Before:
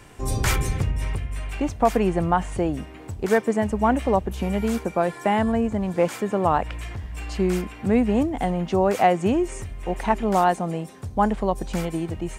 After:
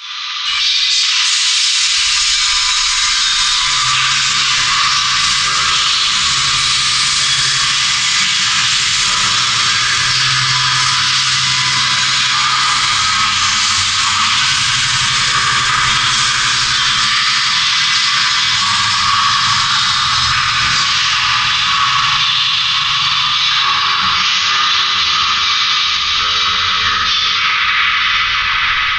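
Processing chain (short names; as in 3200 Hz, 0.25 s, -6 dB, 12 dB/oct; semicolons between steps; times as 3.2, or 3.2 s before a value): tape stop at the end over 0.88 s; elliptic high-pass 2700 Hz, stop band 40 dB; bell 11000 Hz +10.5 dB 2 oct; compressor, threshold -39 dBFS, peak gain reduction 20 dB; echoes that change speed 0.194 s, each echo +5 st, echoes 2; FDN reverb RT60 2.3 s, low-frequency decay 1×, high-frequency decay 0.7×, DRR -9.5 dB; speed mistake 78 rpm record played at 33 rpm; on a send: diffused feedback echo 0.957 s, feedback 50%, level -5.5 dB; on the sum: maximiser +29 dB; three-band expander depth 70%; gain -3 dB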